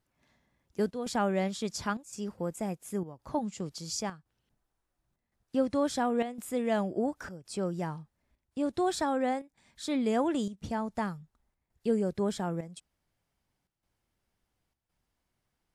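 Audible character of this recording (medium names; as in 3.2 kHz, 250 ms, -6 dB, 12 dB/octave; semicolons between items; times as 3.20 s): chopped level 0.94 Hz, depth 65%, duty 85%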